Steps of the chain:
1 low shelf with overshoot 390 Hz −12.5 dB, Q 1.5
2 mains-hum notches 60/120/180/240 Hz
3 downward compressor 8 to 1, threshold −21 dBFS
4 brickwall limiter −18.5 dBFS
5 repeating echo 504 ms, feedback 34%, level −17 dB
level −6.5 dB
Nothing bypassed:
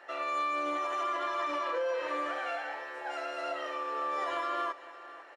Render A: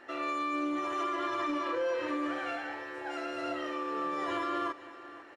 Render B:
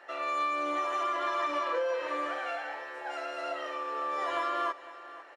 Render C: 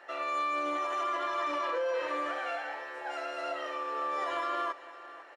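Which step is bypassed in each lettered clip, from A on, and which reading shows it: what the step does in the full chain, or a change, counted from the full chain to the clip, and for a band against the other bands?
1, 250 Hz band +11.0 dB
4, change in crest factor +2.0 dB
3, average gain reduction 2.0 dB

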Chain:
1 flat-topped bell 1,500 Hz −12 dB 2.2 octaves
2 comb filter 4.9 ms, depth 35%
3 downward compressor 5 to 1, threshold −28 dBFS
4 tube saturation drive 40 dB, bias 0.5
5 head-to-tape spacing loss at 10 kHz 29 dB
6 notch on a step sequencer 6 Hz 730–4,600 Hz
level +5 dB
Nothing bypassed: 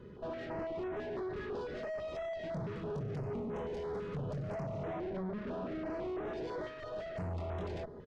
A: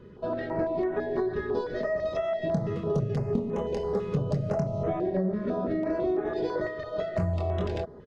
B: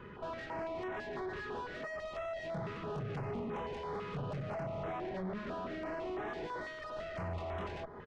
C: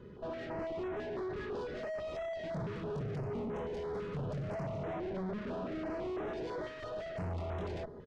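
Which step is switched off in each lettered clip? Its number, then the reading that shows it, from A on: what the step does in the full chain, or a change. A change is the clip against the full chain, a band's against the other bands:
4, change in crest factor +8.0 dB
1, 2 kHz band +6.5 dB
3, average gain reduction 4.0 dB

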